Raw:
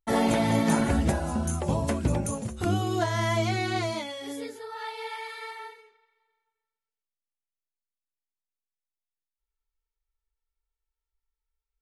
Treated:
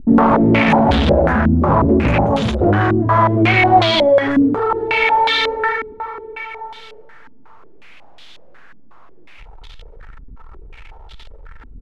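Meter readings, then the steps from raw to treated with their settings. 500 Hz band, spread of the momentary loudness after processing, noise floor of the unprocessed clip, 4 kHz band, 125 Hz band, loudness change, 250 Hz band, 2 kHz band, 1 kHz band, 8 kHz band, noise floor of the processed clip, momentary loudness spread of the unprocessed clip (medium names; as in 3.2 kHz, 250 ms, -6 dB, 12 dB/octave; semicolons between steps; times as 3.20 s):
+15.0 dB, 17 LU, under -85 dBFS, +15.0 dB, +11.0 dB, +13.5 dB, +13.5 dB, +16.5 dB, +16.5 dB, no reading, -38 dBFS, 14 LU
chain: power-law waveshaper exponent 0.35; echo from a far wall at 180 m, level -19 dB; step-sequenced low-pass 5.5 Hz 260–3500 Hz; trim +1.5 dB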